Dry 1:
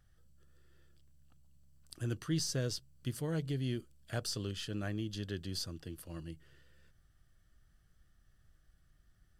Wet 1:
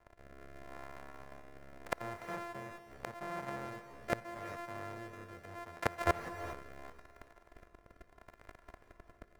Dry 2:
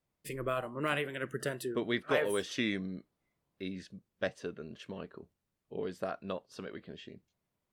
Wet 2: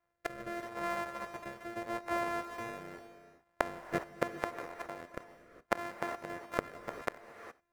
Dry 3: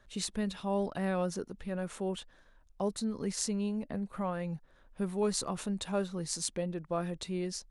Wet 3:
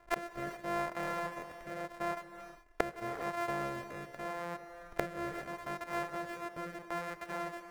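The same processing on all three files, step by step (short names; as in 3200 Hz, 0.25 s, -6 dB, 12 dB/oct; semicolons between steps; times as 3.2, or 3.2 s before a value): sample sorter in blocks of 128 samples; sample leveller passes 3; flipped gate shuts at -26 dBFS, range -25 dB; rotary speaker horn 0.8 Hz; band shelf 1000 Hz +13 dB 2.6 oct; non-linear reverb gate 0.44 s rising, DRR 9.5 dB; gain +4.5 dB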